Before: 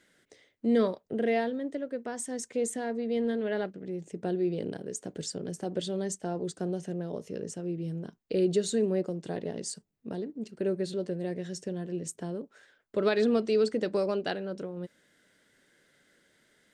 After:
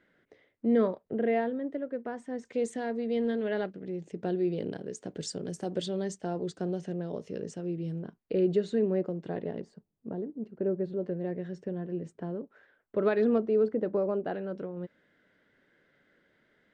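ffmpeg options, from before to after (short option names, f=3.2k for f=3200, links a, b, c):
-af "asetnsamples=n=441:p=0,asendcmd='2.45 lowpass f 4800;5.22 lowpass f 8700;5.86 lowpass f 5000;8.02 lowpass f 2300;9.61 lowpass f 1100;11.03 lowpass f 1800;13.38 lowpass f 1100;14.34 lowpass f 2300',lowpass=2k"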